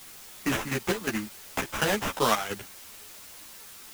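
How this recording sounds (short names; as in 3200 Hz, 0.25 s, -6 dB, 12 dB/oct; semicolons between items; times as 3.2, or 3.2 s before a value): aliases and images of a low sample rate 4500 Hz, jitter 20%; chopped level 2.8 Hz, depth 65%, duty 55%; a quantiser's noise floor 8-bit, dither triangular; a shimmering, thickened sound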